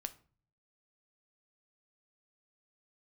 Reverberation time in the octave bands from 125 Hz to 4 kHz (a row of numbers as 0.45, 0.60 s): 0.90, 0.65, 0.45, 0.40, 0.35, 0.30 s